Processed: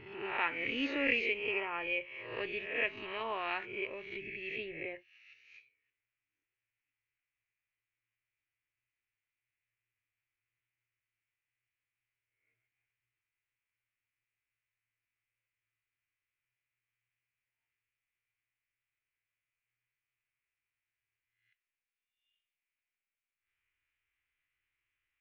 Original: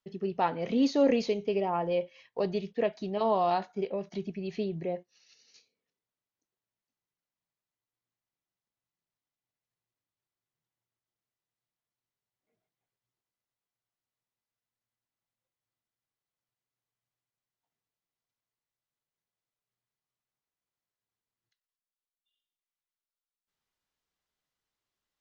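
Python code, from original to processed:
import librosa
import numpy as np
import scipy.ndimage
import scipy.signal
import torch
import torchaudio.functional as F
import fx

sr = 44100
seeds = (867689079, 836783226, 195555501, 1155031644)

y = fx.spec_swells(x, sr, rise_s=0.73)
y = fx.curve_eq(y, sr, hz=(120.0, 180.0, 310.0, 710.0, 2400.0, 4600.0), db=(0, -26, -8, -17, 12, -21))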